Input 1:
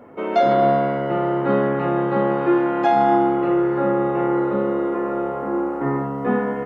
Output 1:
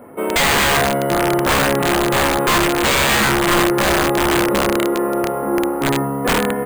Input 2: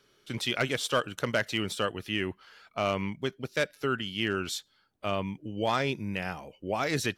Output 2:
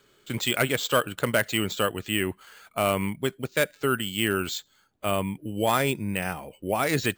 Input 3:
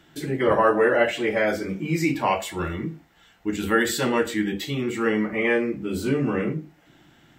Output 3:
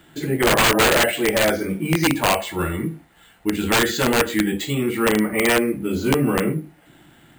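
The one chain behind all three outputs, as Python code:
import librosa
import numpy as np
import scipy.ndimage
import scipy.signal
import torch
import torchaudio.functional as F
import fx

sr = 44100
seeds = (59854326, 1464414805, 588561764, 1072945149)

y = (np.mod(10.0 ** (14.0 / 20.0) * x + 1.0, 2.0) - 1.0) / 10.0 ** (14.0 / 20.0)
y = np.repeat(scipy.signal.resample_poly(y, 1, 4), 4)[:len(y)]
y = y * librosa.db_to_amplitude(4.5)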